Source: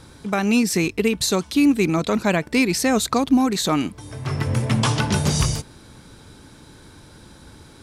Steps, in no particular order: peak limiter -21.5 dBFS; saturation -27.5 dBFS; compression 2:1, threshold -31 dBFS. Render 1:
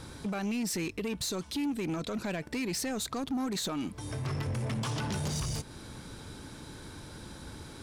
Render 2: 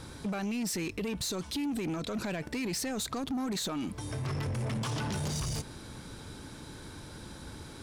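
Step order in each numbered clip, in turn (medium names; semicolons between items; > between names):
compression > peak limiter > saturation; peak limiter > saturation > compression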